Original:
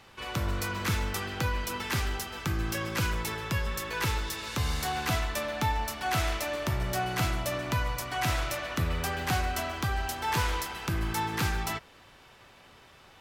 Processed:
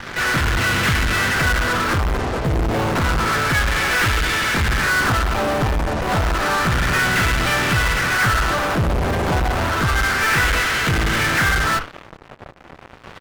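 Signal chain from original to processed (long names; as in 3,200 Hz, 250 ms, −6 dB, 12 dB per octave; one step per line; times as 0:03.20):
lower of the sound and its delayed copy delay 0.58 ms
auto-filter low-pass sine 0.3 Hz 750–2,500 Hz
low-pass filter 5,100 Hz 12 dB per octave
pitch-shifted copies added −12 semitones −12 dB, −5 semitones −9 dB, +5 semitones −5 dB
dynamic equaliser 1,400 Hz, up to +5 dB, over −45 dBFS, Q 3.7
in parallel at −7 dB: fuzz pedal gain 47 dB, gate −53 dBFS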